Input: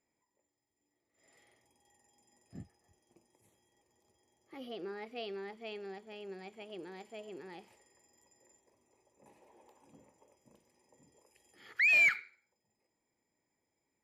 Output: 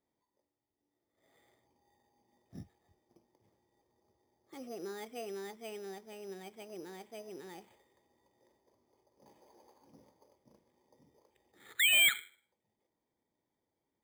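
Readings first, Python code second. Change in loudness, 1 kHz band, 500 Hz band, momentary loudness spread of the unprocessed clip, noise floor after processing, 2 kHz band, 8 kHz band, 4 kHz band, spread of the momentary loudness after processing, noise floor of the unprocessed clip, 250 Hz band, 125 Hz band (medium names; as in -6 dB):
+1.0 dB, -0.5 dB, 0.0 dB, 23 LU, under -85 dBFS, -3.0 dB, +17.0 dB, +15.0 dB, 23 LU, -85 dBFS, 0.0 dB, 0.0 dB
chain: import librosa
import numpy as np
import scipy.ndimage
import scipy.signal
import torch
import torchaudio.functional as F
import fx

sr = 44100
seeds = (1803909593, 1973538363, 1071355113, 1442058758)

y = fx.env_lowpass(x, sr, base_hz=1600.0, full_db=-43.0)
y = np.repeat(scipy.signal.resample_poly(y, 1, 8), 8)[:len(y)]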